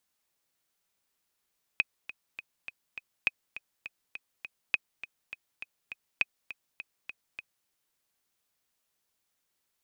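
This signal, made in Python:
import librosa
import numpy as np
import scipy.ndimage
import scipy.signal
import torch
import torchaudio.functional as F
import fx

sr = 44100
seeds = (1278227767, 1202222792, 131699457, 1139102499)

y = fx.click_track(sr, bpm=204, beats=5, bars=4, hz=2520.0, accent_db=15.0, level_db=-11.0)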